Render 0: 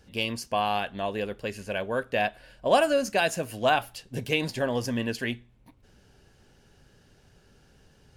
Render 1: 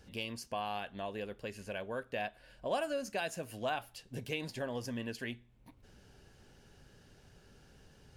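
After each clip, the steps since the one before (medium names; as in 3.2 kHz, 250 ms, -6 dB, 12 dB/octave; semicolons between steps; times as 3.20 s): compression 1.5:1, threshold -51 dBFS, peak gain reduction 12.5 dB; trim -1.5 dB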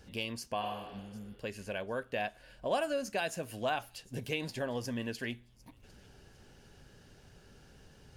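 spectral replace 0.65–1.32 s, 280–6100 Hz both; feedback echo behind a high-pass 752 ms, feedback 34%, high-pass 4.3 kHz, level -19.5 dB; trim +2.5 dB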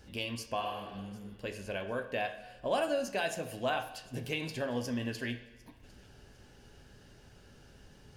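reverberation, pre-delay 3 ms, DRR 5.5 dB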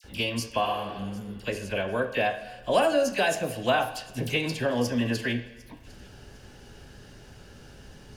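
phase dispersion lows, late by 43 ms, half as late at 1.7 kHz; trim +8.5 dB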